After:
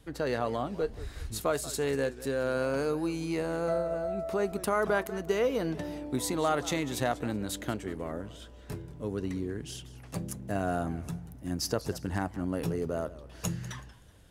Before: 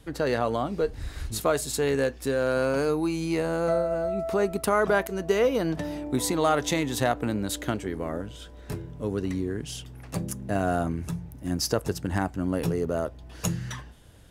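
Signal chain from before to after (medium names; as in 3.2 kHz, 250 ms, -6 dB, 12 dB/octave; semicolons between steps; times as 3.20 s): modulated delay 188 ms, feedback 31%, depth 194 cents, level -17 dB; trim -5 dB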